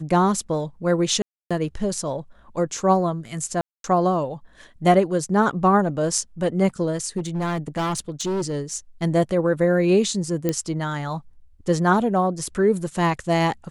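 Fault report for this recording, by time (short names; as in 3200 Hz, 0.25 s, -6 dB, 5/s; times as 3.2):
1.22–1.51 gap 0.286 s
3.61–3.84 gap 0.232 s
7.17–8.77 clipped -21 dBFS
10.49 pop -9 dBFS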